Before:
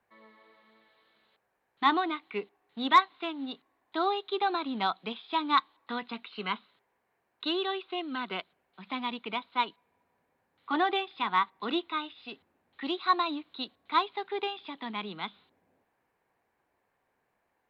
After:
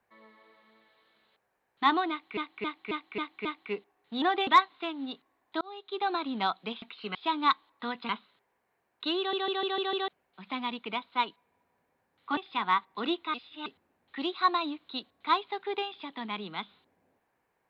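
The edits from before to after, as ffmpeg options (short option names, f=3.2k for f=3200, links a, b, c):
-filter_complex "[0:a]asplit=21[a][b][c][d][e][f][g][h][i][j][k][l][m][n][o][p][q][r][s][t][u];[a]atrim=end=2.372[v];[b]atrim=start=2.098:end=2.372[w];[c]atrim=start=2.098:end=2.372[x];[d]atrim=start=2.098:end=2.372[y];[e]atrim=start=2.098:end=2.372[z];[f]atrim=start=2.098:end=2.872[aa];[g]atrim=start=10.768:end=11.022[ab];[h]atrim=start=2.868:end=4.01,asetpts=PTS-STARTPTS,afade=t=out:st=1.138:d=0.004:c=hsin[ac];[i]atrim=start=4.01:end=5.222,asetpts=PTS-STARTPTS,afade=t=in:d=0.54[ad];[j]atrim=start=6.158:end=6.492[ae];[k]atrim=start=5.218:end=6.162[af];[l]atrim=start=6.488:end=7.732[ag];[m]atrim=start=7.578:end=7.732[ah];[n]atrim=start=7.578:end=7.732[ai];[o]atrim=start=7.578:end=7.732[aj];[p]atrim=start=7.578:end=7.732[ak];[q]atrim=start=7.578:end=7.732[al];[r]atrim=start=8.478:end=10.772[am];[s]atrim=start=11.018:end=11.992[an];[t]atrim=start=11.988:end=12.312,asetpts=PTS-STARTPTS,areverse[ao];[u]atrim=start=12.308[ap];[v][w]acrossfade=d=0.004:c1=hsin:c2=hsin[aq];[aq][x]acrossfade=d=0.004:c1=hsin:c2=hsin[ar];[ar][y]acrossfade=d=0.004:c1=hsin:c2=hsin[as];[as][z]acrossfade=d=0.004:c1=hsin:c2=hsin[at];[at][aa]acrossfade=d=0.004:c1=hsin:c2=hsin[au];[au][ab]acrossfade=d=0.004:c1=hsin:c2=hsin[av];[ac][ad]concat=n=2:v=0:a=1[aw];[av][aw]acrossfade=d=0.004:c1=hsin:c2=hsin[ax];[ax][ae]acrossfade=d=0.004:c1=hsin:c2=hsin[ay];[ay][af]acrossfade=d=0.004:c1=hsin:c2=hsin[az];[az][ag]acrossfade=d=0.004:c1=hsin:c2=hsin[ba];[ba][ah]acrossfade=d=0.004:c1=hsin:c2=hsin[bb];[bb][ai]acrossfade=d=0.004:c1=hsin:c2=hsin[bc];[bc][aj]acrossfade=d=0.004:c1=hsin:c2=hsin[bd];[bd][ak]acrossfade=d=0.004:c1=hsin:c2=hsin[be];[be][al]acrossfade=d=0.004:c1=hsin:c2=hsin[bf];[bf][am]acrossfade=d=0.004:c1=hsin:c2=hsin[bg];[bg][an]acrossfade=d=0.004:c1=hsin:c2=hsin[bh];[bh][ao]acrossfade=d=0.004:c1=hsin:c2=hsin[bi];[bi][ap]acrossfade=d=0.004:c1=hsin:c2=hsin"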